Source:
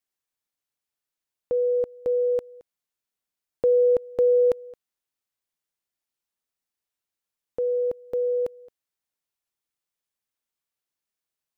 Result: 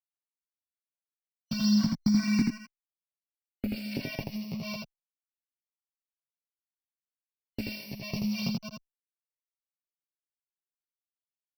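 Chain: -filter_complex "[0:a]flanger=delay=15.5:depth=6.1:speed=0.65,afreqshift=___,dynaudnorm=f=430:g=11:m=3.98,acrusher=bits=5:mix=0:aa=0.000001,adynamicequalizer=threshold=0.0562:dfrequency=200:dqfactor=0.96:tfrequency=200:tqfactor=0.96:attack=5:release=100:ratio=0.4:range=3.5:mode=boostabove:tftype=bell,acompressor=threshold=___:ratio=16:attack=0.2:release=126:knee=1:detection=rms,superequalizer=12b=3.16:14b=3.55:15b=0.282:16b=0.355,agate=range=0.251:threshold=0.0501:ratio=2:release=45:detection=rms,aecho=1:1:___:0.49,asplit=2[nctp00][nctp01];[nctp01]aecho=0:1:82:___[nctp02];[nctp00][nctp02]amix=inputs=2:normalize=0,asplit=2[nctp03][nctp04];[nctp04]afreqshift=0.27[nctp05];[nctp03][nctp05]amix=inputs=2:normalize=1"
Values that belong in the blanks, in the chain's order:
-280, 0.178, 7.3, 0.668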